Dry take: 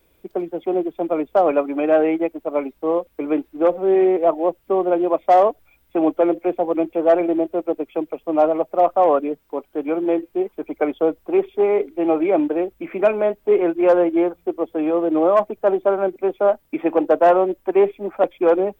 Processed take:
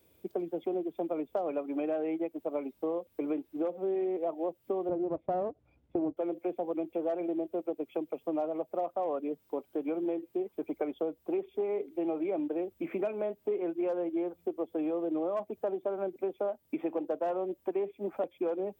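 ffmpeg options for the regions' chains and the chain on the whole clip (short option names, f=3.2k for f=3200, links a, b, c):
-filter_complex "[0:a]asettb=1/sr,asplit=3[a][b][c];[a]atrim=end=4.894[d];[b]atrim=start=4.89:end=6.17,asetpts=PTS-STARTPTS,afade=t=in:d=0.004:c=qsin,afade=t=out:st=1.276:d=0.004:c=qsin,aeval=exprs='if(lt(val(0),0),0.447*val(0),val(0))':c=same,lowpass=3.1k,tiltshelf=f=910:g=8.5[e];[c]atrim=start=6.166[f];[d][e]acrossfade=d=0.004:c1=hsin:c2=qsin[g];[g][f]acrossfade=d=0.004:c1=qsin:c2=hsin,highpass=f=70:w=0.5412,highpass=f=70:w=1.3066,equalizer=f=1.5k:w=0.71:g=-7,acompressor=threshold=-27dB:ratio=6,volume=-3dB"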